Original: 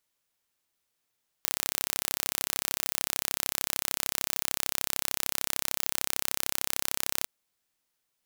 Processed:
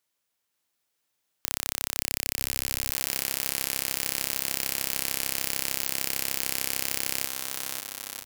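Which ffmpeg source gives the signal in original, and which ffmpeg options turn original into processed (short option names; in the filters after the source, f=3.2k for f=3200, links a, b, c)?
-f lavfi -i "aevalsrc='0.891*eq(mod(n,1324),0)':d=5.82:s=44100"
-filter_complex "[0:a]highpass=f=94:p=1,asplit=2[a][b];[b]aecho=0:1:540|945|1249|1477|1647:0.631|0.398|0.251|0.158|0.1[c];[a][c]amix=inputs=2:normalize=0"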